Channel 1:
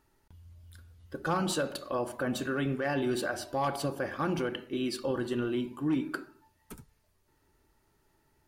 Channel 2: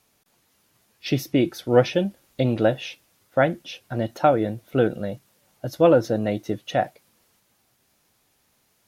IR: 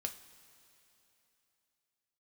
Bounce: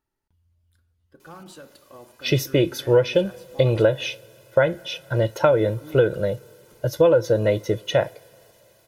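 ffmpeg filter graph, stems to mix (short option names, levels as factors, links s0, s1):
-filter_complex "[0:a]volume=0.224,asplit=3[s0][s1][s2];[s0]atrim=end=4.09,asetpts=PTS-STARTPTS,afade=t=out:st=4.086:d=0.004:c=hsin[s3];[s1]atrim=start=4.09:end=5.45,asetpts=PTS-STARTPTS,volume=0[s4];[s2]atrim=start=5.45,asetpts=PTS-STARTPTS,afade=t=in:d=0.004:c=hsin[s5];[s3][s4][s5]concat=n=3:v=0:a=1[s6];[1:a]aecho=1:1:2:0.8,adelay=1200,volume=1.26,asplit=2[s7][s8];[s8]volume=0.251[s9];[2:a]atrim=start_sample=2205[s10];[s9][s10]afir=irnorm=-1:irlink=0[s11];[s6][s7][s11]amix=inputs=3:normalize=0,acompressor=threshold=0.224:ratio=6"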